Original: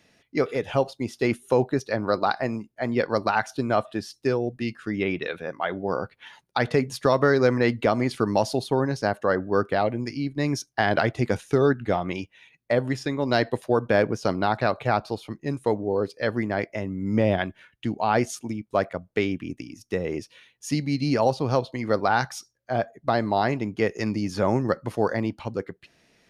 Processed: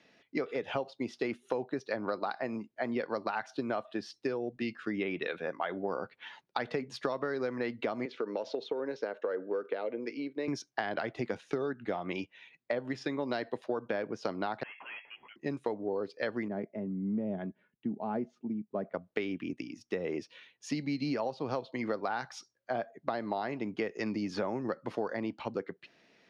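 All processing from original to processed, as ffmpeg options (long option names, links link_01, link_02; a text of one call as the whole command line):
ffmpeg -i in.wav -filter_complex "[0:a]asettb=1/sr,asplit=3[link_01][link_02][link_03];[link_01]atrim=end=8.054[link_04];[link_02]atrim=start=8.05:end=10.48,asetpts=PTS-STARTPTS,afade=type=in:duration=0.004:curve=qsin,afade=type=out:start_time=2.426:duration=0.004:curve=qsin,acompressor=threshold=-23dB:ratio=6:attack=3.2:release=140:knee=1:detection=peak,highpass=350,equalizer=frequency=470:width_type=q:width=4:gain=9,equalizer=frequency=750:width_type=q:width=4:gain=-9,equalizer=frequency=1100:width_type=q:width=4:gain=-6,equalizer=frequency=1800:width_type=q:width=4:gain=-4,equalizer=frequency=3000:width_type=q:width=4:gain=-3,equalizer=frequency=4700:width_type=q:width=4:gain=-10,lowpass=frequency=5200:width=0.5412,lowpass=frequency=5200:width=1.3066[link_05];[link_03]atrim=start=10.476[link_06];[link_04][link_05]acrossfade=duration=0.004:curve1=hsin:curve2=qsin[link_07];[link_07][link_06]acrossfade=duration=0.004:curve1=qsin:curve2=hsin,asettb=1/sr,asplit=3[link_08][link_09][link_10];[link_08]atrim=end=14.634[link_11];[link_09]atrim=start=14.63:end=15.36,asetpts=PTS-STARTPTS,afade=type=in:duration=0.004:curve=qsin,afade=type=out:start_time=0.726:duration=0.004:curve=qsin,highpass=990,aeval=exprs='(tanh(100*val(0)+0.1)-tanh(0.1))/100':channel_layout=same,lowpass=frequency=2800:width_type=q:width=0.5098,lowpass=frequency=2800:width_type=q:width=0.6013,lowpass=frequency=2800:width_type=q:width=0.9,lowpass=frequency=2800:width_type=q:width=2.563,afreqshift=-3300[link_12];[link_10]atrim=start=15.356[link_13];[link_11][link_12]acrossfade=duration=0.004:curve1=hsin:curve2=qsin[link_14];[link_14][link_13]acrossfade=duration=0.004:curve1=qsin:curve2=hsin,asettb=1/sr,asplit=3[link_15][link_16][link_17];[link_15]atrim=end=16.484[link_18];[link_16]atrim=start=16.48:end=18.94,asetpts=PTS-STARTPTS,afade=type=in:duration=0.004:curve=qsin,afade=type=out:start_time=2.456:duration=0.004:curve=qsin,bandpass=frequency=170:width_type=q:width=0.85,aecho=1:1:4.8:0.33,atrim=end_sample=108486[link_19];[link_17]atrim=start=18.936[link_20];[link_18][link_19]acrossfade=duration=0.004:curve1=hsin:curve2=qsin[link_21];[link_21][link_20]acrossfade=duration=0.004:curve1=qsin:curve2=hsin,acrossover=split=170 5500:gain=0.158 1 0.0794[link_22][link_23][link_24];[link_22][link_23][link_24]amix=inputs=3:normalize=0,acompressor=threshold=-28dB:ratio=10,volume=-1.5dB" out.wav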